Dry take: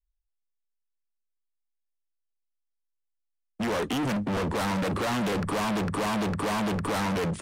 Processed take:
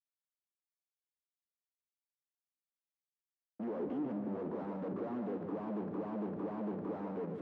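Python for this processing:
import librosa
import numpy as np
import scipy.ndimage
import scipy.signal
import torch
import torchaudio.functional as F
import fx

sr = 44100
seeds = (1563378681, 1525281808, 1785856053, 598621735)

p1 = fx.leveller(x, sr, passes=5)
p2 = fx.ladder_bandpass(p1, sr, hz=360.0, resonance_pct=25)
p3 = p2 + fx.echo_single(p2, sr, ms=145, db=-7.0, dry=0)
y = F.gain(torch.from_numpy(p3), 1.0).numpy()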